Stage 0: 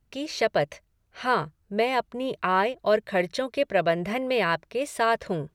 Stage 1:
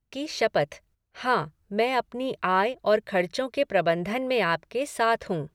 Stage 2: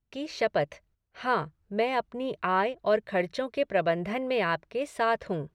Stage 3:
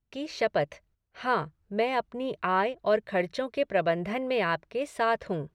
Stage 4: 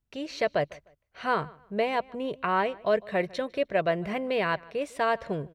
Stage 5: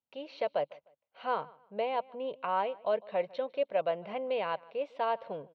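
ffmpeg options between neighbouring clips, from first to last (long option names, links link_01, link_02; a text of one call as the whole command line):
ffmpeg -i in.wav -af "agate=range=-10dB:threshold=-60dB:ratio=16:detection=peak" out.wav
ffmpeg -i in.wav -af "highshelf=frequency=5600:gain=-10.5,volume=-2.5dB" out.wav
ffmpeg -i in.wav -af anull out.wav
ffmpeg -i in.wav -filter_complex "[0:a]asplit=2[link_01][link_02];[link_02]adelay=152,lowpass=frequency=3900:poles=1,volume=-22.5dB,asplit=2[link_03][link_04];[link_04]adelay=152,lowpass=frequency=3900:poles=1,volume=0.28[link_05];[link_01][link_03][link_05]amix=inputs=3:normalize=0" out.wav
ffmpeg -i in.wav -af "highpass=250,equalizer=frequency=360:width_type=q:width=4:gain=-7,equalizer=frequency=530:width_type=q:width=4:gain=7,equalizer=frequency=860:width_type=q:width=4:gain=9,equalizer=frequency=1800:width_type=q:width=4:gain=-9,equalizer=frequency=3000:width_type=q:width=4:gain=3,lowpass=frequency=4000:width=0.5412,lowpass=frequency=4000:width=1.3066,volume=-8dB" out.wav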